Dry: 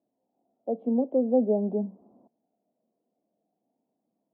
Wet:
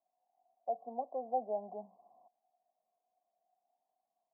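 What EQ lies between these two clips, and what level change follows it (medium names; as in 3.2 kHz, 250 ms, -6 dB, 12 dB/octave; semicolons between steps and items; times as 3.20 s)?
cascade formant filter a; peaking EQ 280 Hz -10.5 dB 1.8 oct; +10.0 dB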